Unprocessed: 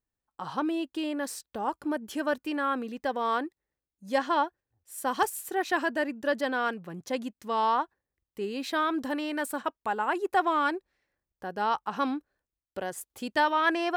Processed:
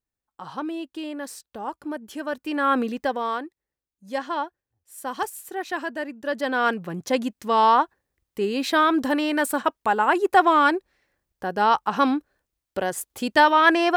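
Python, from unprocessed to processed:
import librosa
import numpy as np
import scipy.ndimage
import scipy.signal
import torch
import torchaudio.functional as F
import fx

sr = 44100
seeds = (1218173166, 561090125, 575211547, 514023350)

y = fx.gain(x, sr, db=fx.line((2.3, -1.0), (2.81, 10.5), (3.43, -1.5), (6.2, -1.5), (6.71, 8.5)))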